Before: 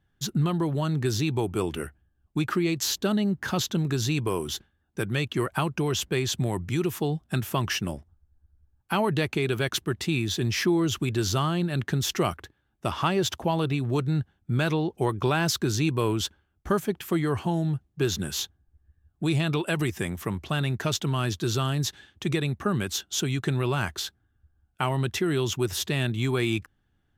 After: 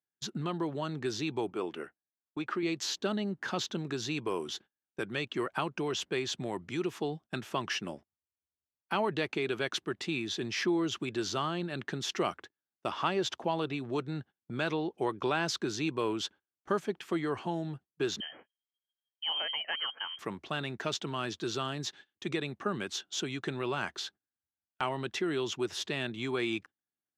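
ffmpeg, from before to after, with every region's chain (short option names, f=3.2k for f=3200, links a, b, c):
-filter_complex "[0:a]asettb=1/sr,asplit=3[a][b][c];[a]atrim=end=1.504[d];[b]atrim=start=1.5:end=2.63,asetpts=PTS-STARTPTS,afade=t=in:d=0.004:c=qsin,afade=t=out:st=1.126:d=0.004:c=qsin,highpass=f=240:p=1,equalizer=f=9k:w=0.36:g=-8[e];[c]atrim=start=2.626[f];[d][e]acrossfade=d=0.004:c1=hsin:c2=qsin[g];[g][f]acrossfade=d=0.004:c1=qsin:c2=hsin,asettb=1/sr,asplit=3[h][i][j];[h]atrim=end=18.204[k];[i]atrim=start=18.2:end=20.19,asetpts=PTS-STARTPTS,afade=t=in:d=0.004:c=qsin,afade=t=out:st=1.986:d=0.004:c=qsin,highpass=f=230:p=1,equalizer=f=570:w=2.4:g=-13,lowpass=f=2.8k:t=q:w=0.5098,lowpass=f=2.8k:t=q:w=0.6013,lowpass=f=2.8k:t=q:w=0.9,lowpass=f=2.8k:t=q:w=2.563,afreqshift=-3300[l];[j]atrim=start=20.186[m];[k][l]acrossfade=d=0.004:c1=hsin:c2=qsin[n];[n][m]acrossfade=d=0.004:c1=qsin:c2=hsin,highpass=250,agate=range=-19dB:threshold=-44dB:ratio=16:detection=peak,lowpass=5.6k,volume=-4.5dB"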